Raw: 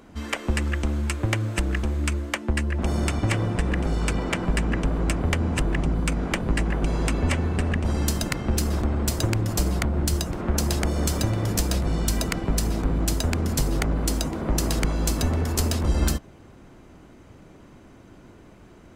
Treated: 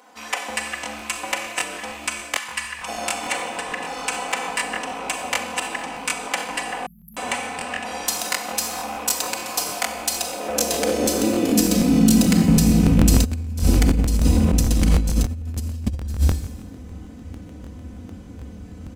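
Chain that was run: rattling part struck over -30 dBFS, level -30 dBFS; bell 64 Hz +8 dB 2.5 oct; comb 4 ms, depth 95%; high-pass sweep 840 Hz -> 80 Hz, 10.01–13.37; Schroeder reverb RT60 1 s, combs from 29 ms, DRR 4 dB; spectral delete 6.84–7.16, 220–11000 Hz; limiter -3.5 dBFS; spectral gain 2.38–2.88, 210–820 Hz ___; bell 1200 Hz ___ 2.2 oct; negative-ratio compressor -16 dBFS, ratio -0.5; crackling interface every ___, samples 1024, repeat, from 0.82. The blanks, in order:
-12 dB, -8 dB, 0.15 s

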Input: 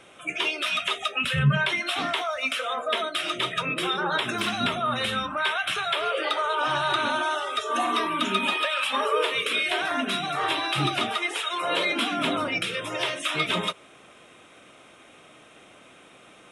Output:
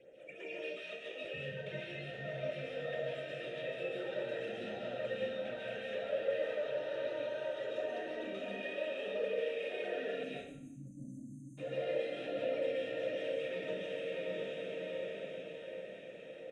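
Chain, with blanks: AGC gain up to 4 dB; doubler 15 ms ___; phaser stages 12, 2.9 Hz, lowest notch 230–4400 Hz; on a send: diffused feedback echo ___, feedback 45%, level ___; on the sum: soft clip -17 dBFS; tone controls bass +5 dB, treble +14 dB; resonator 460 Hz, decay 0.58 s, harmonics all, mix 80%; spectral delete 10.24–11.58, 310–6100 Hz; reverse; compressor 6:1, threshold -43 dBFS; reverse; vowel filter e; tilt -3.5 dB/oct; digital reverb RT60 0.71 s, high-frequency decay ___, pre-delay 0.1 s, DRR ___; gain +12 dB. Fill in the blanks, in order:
-11 dB, 0.646 s, -5 dB, 0.9×, -4.5 dB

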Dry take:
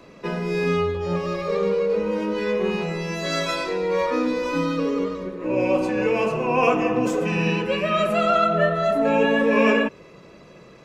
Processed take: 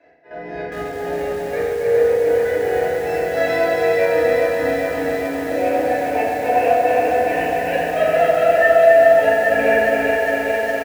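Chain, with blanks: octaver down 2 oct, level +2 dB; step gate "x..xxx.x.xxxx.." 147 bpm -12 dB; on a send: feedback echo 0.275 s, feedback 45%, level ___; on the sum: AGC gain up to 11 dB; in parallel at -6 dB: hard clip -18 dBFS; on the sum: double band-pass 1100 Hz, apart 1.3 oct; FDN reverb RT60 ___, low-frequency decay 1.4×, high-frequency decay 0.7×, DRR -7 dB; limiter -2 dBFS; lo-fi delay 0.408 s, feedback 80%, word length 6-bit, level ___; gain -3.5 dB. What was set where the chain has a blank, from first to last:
-5 dB, 0.92 s, -4 dB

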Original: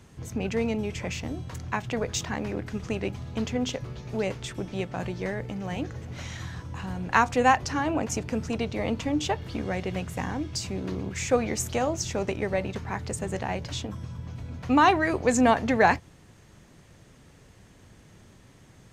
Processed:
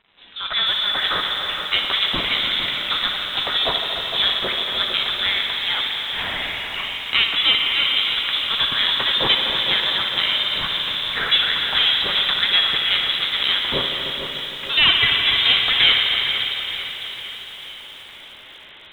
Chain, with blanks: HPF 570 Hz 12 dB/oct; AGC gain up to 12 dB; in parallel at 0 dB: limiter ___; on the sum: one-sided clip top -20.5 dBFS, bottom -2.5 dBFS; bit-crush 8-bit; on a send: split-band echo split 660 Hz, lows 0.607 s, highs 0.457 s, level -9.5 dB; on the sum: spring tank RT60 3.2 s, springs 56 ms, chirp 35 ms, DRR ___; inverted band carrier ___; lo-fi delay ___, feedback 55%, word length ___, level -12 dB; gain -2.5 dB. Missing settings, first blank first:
-9.5 dBFS, 2 dB, 3900 Hz, 0.3 s, 6-bit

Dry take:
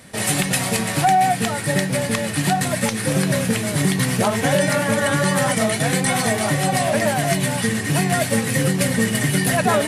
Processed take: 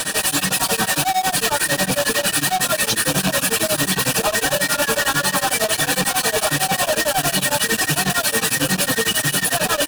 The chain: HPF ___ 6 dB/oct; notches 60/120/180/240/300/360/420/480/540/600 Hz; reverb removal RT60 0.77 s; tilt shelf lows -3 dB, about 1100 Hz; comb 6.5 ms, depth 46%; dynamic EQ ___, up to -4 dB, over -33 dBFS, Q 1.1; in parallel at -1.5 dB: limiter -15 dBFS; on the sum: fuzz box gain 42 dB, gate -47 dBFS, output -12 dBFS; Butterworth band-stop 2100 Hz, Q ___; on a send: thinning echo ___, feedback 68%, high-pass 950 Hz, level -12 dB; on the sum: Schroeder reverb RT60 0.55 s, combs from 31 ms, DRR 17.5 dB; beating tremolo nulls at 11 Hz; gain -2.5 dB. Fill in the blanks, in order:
380 Hz, 7300 Hz, 5.6, 0.7 s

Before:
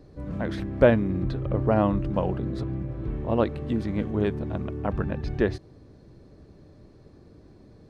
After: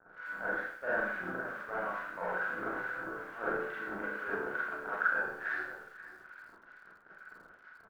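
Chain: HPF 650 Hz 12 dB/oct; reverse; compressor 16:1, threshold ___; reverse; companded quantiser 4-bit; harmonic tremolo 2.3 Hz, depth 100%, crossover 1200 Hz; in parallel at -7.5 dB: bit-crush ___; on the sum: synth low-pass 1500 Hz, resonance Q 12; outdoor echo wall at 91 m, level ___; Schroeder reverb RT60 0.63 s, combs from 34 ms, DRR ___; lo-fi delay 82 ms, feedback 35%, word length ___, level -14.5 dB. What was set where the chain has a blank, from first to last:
-44 dBFS, 7-bit, -13 dB, -8.5 dB, 9-bit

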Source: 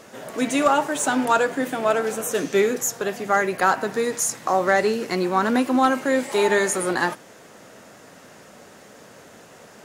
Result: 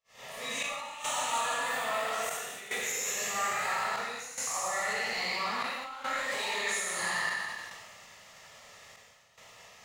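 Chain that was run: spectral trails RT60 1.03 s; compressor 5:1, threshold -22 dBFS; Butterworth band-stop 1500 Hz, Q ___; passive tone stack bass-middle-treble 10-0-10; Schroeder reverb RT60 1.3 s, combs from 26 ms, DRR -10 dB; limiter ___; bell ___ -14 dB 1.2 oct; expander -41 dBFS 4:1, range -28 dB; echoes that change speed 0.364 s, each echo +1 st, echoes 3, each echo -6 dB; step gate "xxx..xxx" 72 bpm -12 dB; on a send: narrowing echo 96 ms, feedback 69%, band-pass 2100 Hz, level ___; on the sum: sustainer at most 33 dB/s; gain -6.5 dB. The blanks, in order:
5, -12 dBFS, 11000 Hz, -22.5 dB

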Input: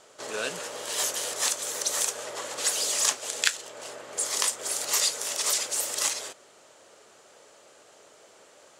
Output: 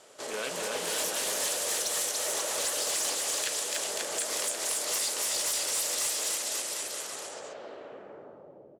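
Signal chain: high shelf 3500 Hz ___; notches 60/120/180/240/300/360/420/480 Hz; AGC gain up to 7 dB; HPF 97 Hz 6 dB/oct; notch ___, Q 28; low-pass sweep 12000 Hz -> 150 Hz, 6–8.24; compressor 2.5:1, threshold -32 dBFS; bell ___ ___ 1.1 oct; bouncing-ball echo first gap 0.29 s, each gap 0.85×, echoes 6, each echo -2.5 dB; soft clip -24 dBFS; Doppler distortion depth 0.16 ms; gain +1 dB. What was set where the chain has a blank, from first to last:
-3 dB, 6500 Hz, 1200 Hz, -3.5 dB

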